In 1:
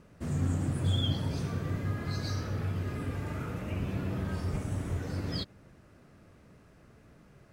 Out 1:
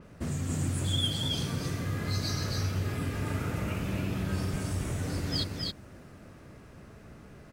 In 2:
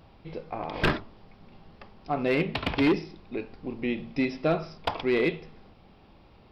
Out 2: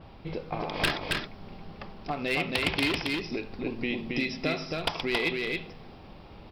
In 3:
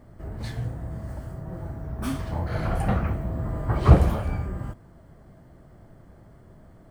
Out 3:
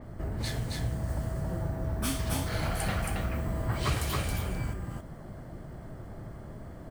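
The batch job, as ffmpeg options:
-filter_complex "[0:a]acrossover=split=2100[s0][s1];[s0]acompressor=threshold=0.0158:ratio=6[s2];[s1]volume=18.8,asoftclip=hard,volume=0.0531[s3];[s2][s3]amix=inputs=2:normalize=0,aecho=1:1:273:0.708,adynamicequalizer=threshold=0.00224:dfrequency=5300:dqfactor=0.7:tfrequency=5300:tqfactor=0.7:attack=5:release=100:ratio=0.375:range=2:mode=boostabove:tftype=highshelf,volume=1.88"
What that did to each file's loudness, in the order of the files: +1.5 LU, -1.5 LU, -6.0 LU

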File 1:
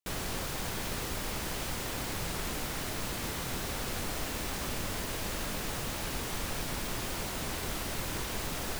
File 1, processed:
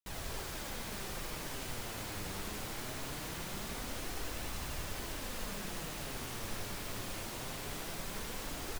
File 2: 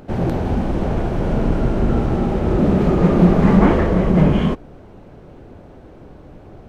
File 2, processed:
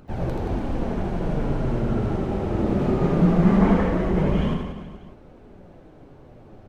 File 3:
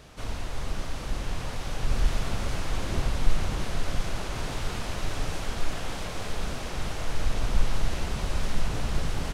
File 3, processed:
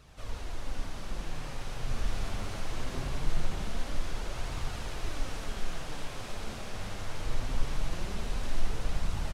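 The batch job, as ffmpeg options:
-filter_complex "[0:a]flanger=delay=0.7:depth=9.9:regen=44:speed=0.22:shape=triangular,asplit=2[s0][s1];[s1]aecho=0:1:80|176|291.2|429.4|595.3:0.631|0.398|0.251|0.158|0.1[s2];[s0][s2]amix=inputs=2:normalize=0,volume=0.631"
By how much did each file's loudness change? -6.0 LU, -6.0 LU, -6.0 LU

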